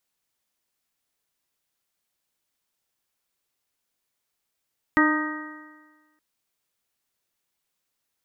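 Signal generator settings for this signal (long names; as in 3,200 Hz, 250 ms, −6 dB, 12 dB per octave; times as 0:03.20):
stiff-string partials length 1.22 s, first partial 304 Hz, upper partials −12.5/−9/−4/−9/−2 dB, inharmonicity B 0.0021, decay 1.36 s, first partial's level −17 dB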